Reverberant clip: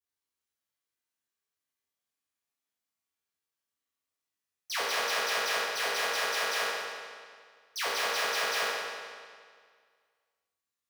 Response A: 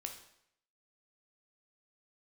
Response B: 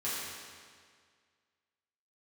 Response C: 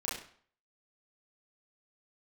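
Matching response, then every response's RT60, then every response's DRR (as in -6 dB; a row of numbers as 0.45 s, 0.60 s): B; 0.75 s, 1.9 s, 0.50 s; 3.5 dB, -10.5 dB, -6.5 dB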